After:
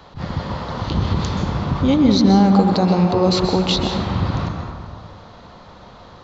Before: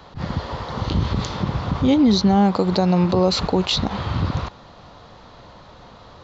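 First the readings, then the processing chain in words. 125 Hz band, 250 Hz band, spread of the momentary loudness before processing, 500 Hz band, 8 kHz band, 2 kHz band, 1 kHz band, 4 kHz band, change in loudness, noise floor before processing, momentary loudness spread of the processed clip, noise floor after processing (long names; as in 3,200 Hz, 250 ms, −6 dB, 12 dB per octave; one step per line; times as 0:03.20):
+2.5 dB, +3.0 dB, 13 LU, +2.0 dB, can't be measured, +1.5 dB, +2.5 dB, +1.0 dB, +2.5 dB, −45 dBFS, 14 LU, −43 dBFS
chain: dense smooth reverb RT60 1.9 s, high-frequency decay 0.35×, pre-delay 115 ms, DRR 3 dB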